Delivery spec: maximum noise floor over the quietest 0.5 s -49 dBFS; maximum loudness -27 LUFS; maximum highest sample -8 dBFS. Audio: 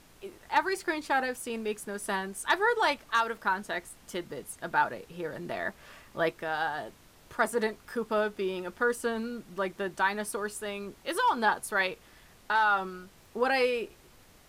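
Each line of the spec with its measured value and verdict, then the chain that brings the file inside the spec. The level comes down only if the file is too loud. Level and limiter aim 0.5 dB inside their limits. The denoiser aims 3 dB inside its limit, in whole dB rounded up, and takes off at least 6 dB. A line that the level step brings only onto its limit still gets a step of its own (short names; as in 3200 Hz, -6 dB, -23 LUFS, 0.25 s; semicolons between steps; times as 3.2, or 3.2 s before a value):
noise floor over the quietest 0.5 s -57 dBFS: OK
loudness -30.5 LUFS: OK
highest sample -13.0 dBFS: OK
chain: none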